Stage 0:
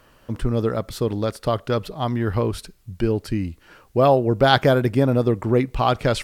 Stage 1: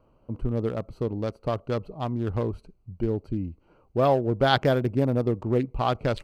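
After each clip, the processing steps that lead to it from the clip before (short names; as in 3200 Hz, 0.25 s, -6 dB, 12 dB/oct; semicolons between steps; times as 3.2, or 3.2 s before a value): Wiener smoothing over 25 samples; gain -5 dB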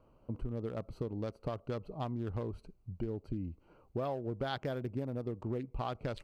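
compressor 6:1, threshold -31 dBFS, peak gain reduction 14.5 dB; gain -3 dB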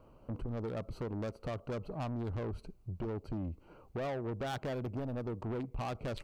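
soft clip -39 dBFS, distortion -8 dB; gain +5.5 dB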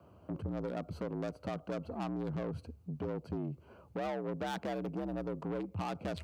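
frequency shift +61 Hz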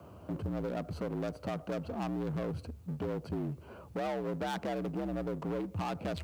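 G.711 law mismatch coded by mu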